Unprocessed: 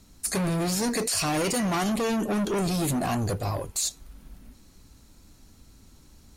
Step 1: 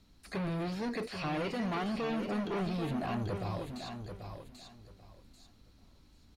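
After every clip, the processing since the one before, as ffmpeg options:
-filter_complex "[0:a]highshelf=f=5.5k:t=q:w=1.5:g=-8.5,aecho=1:1:788|1576|2364:0.398|0.0836|0.0176,acrossover=split=3500[a][b];[b]acompressor=threshold=-49dB:ratio=4:attack=1:release=60[c];[a][c]amix=inputs=2:normalize=0,volume=-8.5dB"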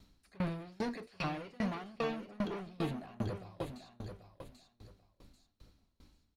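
-af "bandreject=f=115.8:t=h:w=4,bandreject=f=231.6:t=h:w=4,bandreject=f=347.4:t=h:w=4,bandreject=f=463.2:t=h:w=4,bandreject=f=579:t=h:w=4,bandreject=f=694.8:t=h:w=4,bandreject=f=810.6:t=h:w=4,bandreject=f=926.4:t=h:w=4,bandreject=f=1.0422k:t=h:w=4,bandreject=f=1.158k:t=h:w=4,bandreject=f=1.2738k:t=h:w=4,bandreject=f=1.3896k:t=h:w=4,bandreject=f=1.5054k:t=h:w=4,bandreject=f=1.6212k:t=h:w=4,bandreject=f=1.737k:t=h:w=4,bandreject=f=1.8528k:t=h:w=4,bandreject=f=1.9686k:t=h:w=4,bandreject=f=2.0844k:t=h:w=4,bandreject=f=2.2002k:t=h:w=4,bandreject=f=2.316k:t=h:w=4,bandreject=f=2.4318k:t=h:w=4,bandreject=f=2.5476k:t=h:w=4,bandreject=f=2.6634k:t=h:w=4,bandreject=f=2.7792k:t=h:w=4,bandreject=f=2.895k:t=h:w=4,bandreject=f=3.0108k:t=h:w=4,bandreject=f=3.1266k:t=h:w=4,bandreject=f=3.2424k:t=h:w=4,bandreject=f=3.3582k:t=h:w=4,bandreject=f=3.474k:t=h:w=4,bandreject=f=3.5898k:t=h:w=4,bandreject=f=3.7056k:t=h:w=4,bandreject=f=3.8214k:t=h:w=4,bandreject=f=3.9372k:t=h:w=4,bandreject=f=4.053k:t=h:w=4,bandreject=f=4.1688k:t=h:w=4,bandreject=f=4.2846k:t=h:w=4,bandreject=f=4.4004k:t=h:w=4,bandreject=f=4.5162k:t=h:w=4,aeval=exprs='val(0)*pow(10,-28*if(lt(mod(2.5*n/s,1),2*abs(2.5)/1000),1-mod(2.5*n/s,1)/(2*abs(2.5)/1000),(mod(2.5*n/s,1)-2*abs(2.5)/1000)/(1-2*abs(2.5)/1000))/20)':c=same,volume=4dB"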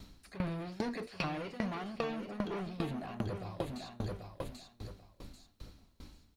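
-af "acompressor=threshold=-43dB:ratio=12,volume=10dB"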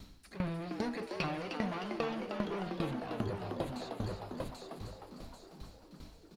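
-filter_complex "[0:a]asplit=7[a][b][c][d][e][f][g];[b]adelay=308,afreqshift=140,volume=-7dB[h];[c]adelay=616,afreqshift=280,volume=-12.8dB[i];[d]adelay=924,afreqshift=420,volume=-18.7dB[j];[e]adelay=1232,afreqshift=560,volume=-24.5dB[k];[f]adelay=1540,afreqshift=700,volume=-30.4dB[l];[g]adelay=1848,afreqshift=840,volume=-36.2dB[m];[a][h][i][j][k][l][m]amix=inputs=7:normalize=0"

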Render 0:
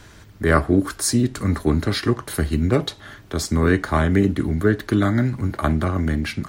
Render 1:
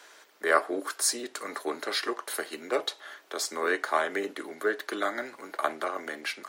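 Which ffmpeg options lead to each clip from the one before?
-af "highpass=f=450:w=0.5412,highpass=f=450:w=1.3066,volume=-3.5dB"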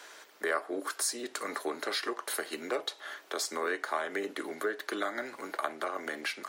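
-af "acompressor=threshold=-35dB:ratio=2.5,volume=2.5dB"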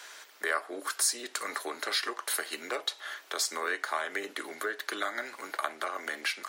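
-af "tiltshelf=f=700:g=-6,volume=-1.5dB"

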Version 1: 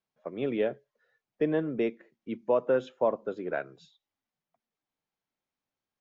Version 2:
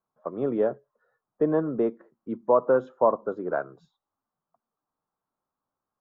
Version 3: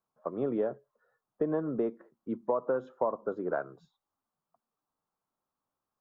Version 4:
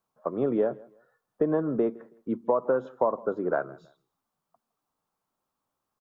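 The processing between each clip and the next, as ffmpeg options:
-af "highshelf=f=1.7k:t=q:w=3:g=-12.5,volume=3dB"
-af "acompressor=threshold=-24dB:ratio=5,volume=-2dB"
-af "aecho=1:1:161|322:0.075|0.0195,volume=5dB"

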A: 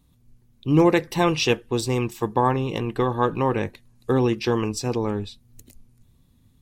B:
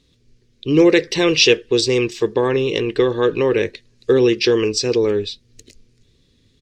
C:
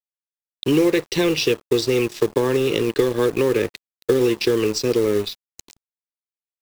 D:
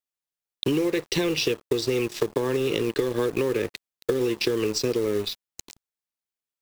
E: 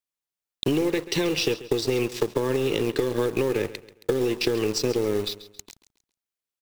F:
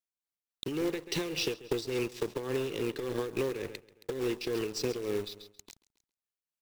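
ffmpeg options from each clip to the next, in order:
-filter_complex "[0:a]asplit=2[a][b];[b]alimiter=limit=-14.5dB:level=0:latency=1:release=29,volume=-3dB[c];[a][c]amix=inputs=2:normalize=0,firequalizer=gain_entry='entry(220,0);entry(420,14);entry(780,-6);entry(1800,10);entry(4900,15);entry(12000,-12)':delay=0.05:min_phase=1,volume=-5.5dB"
-filter_complex "[0:a]acrossover=split=160|400[a][b][c];[a]acompressor=threshold=-41dB:ratio=4[d];[b]acompressor=threshold=-27dB:ratio=4[e];[c]acompressor=threshold=-30dB:ratio=4[f];[d][e][f]amix=inputs=3:normalize=0,acrusher=bits=5:mode=log:mix=0:aa=0.000001,aeval=exprs='sgn(val(0))*max(abs(val(0))-0.0106,0)':c=same,volume=7dB"
-af "acompressor=threshold=-23dB:ratio=6,volume=2dB"
-af "aeval=exprs='0.355*(cos(1*acos(clip(val(0)/0.355,-1,1)))-cos(1*PI/2))+0.0282*(cos(4*acos(clip(val(0)/0.355,-1,1)))-cos(4*PI/2))+0.00562*(cos(6*acos(clip(val(0)/0.355,-1,1)))-cos(6*PI/2))':c=same,aecho=1:1:136|272|408:0.158|0.0555|0.0194"
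-filter_complex "[0:a]asplit=2[a][b];[b]aeval=exprs='(mod(7.94*val(0)+1,2)-1)/7.94':c=same,volume=-10dB[c];[a][c]amix=inputs=2:normalize=0,tremolo=f=3.5:d=0.57,volume=-7.5dB"

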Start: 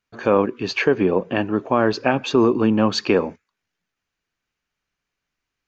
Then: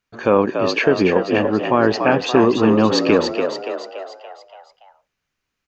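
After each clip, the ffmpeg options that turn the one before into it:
-filter_complex "[0:a]asplit=7[a][b][c][d][e][f][g];[b]adelay=286,afreqshift=65,volume=-6dB[h];[c]adelay=572,afreqshift=130,volume=-11.7dB[i];[d]adelay=858,afreqshift=195,volume=-17.4dB[j];[e]adelay=1144,afreqshift=260,volume=-23dB[k];[f]adelay=1430,afreqshift=325,volume=-28.7dB[l];[g]adelay=1716,afreqshift=390,volume=-34.4dB[m];[a][h][i][j][k][l][m]amix=inputs=7:normalize=0,volume=2dB"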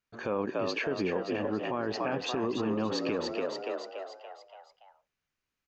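-af "alimiter=limit=-12.5dB:level=0:latency=1:release=143,volume=-9dB"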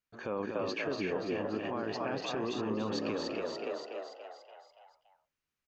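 -af "aecho=1:1:241:0.562,volume=-4.5dB"

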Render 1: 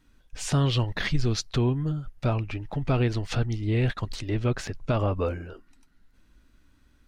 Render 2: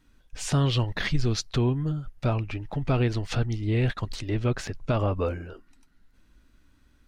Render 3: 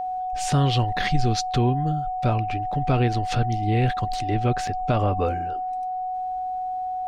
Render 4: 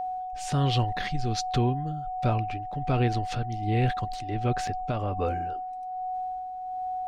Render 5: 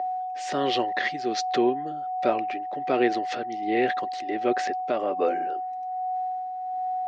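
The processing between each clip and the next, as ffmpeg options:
-af anull
-af "aeval=exprs='val(0)+0.0398*sin(2*PI*740*n/s)':c=same,volume=2.5dB"
-af "tremolo=f=1.3:d=0.46,volume=-3dB"
-af "highpass=f=250:w=0.5412,highpass=f=250:w=1.3066,equalizer=f=370:t=q:w=4:g=7,equalizer=f=580:t=q:w=4:g=7,equalizer=f=1.9k:t=q:w=4:g=9,lowpass=f=6.6k:w=0.5412,lowpass=f=6.6k:w=1.3066,volume=1.5dB"

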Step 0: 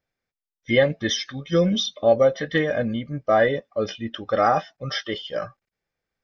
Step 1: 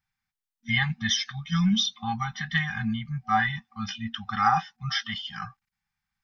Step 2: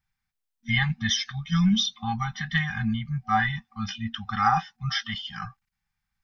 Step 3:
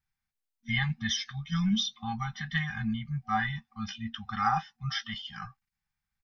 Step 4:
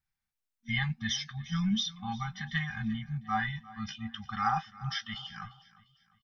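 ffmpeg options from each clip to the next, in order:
-af "afftfilt=real='re*(1-between(b*sr/4096,230,750))':imag='im*(1-between(b*sr/4096,230,750))':win_size=4096:overlap=0.75"
-af "lowshelf=f=88:g=9.5"
-filter_complex "[0:a]asplit=2[a][b];[b]adelay=14,volume=-13dB[c];[a][c]amix=inputs=2:normalize=0,volume=-5.5dB"
-af "aecho=1:1:350|700|1050:0.106|0.0424|0.0169,volume=-2dB"

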